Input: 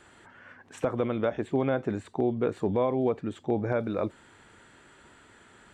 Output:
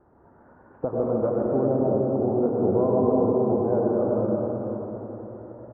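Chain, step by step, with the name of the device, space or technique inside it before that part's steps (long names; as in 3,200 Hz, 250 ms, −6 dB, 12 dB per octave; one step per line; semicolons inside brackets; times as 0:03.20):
0:01.42–0:02.02: low-pass filter 1,000 Hz 24 dB per octave
inverse Chebyshev low-pass filter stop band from 5,500 Hz, stop band 80 dB
cave (single-tap delay 383 ms −9.5 dB; convolution reverb RT60 4.5 s, pre-delay 90 ms, DRR −4.5 dB)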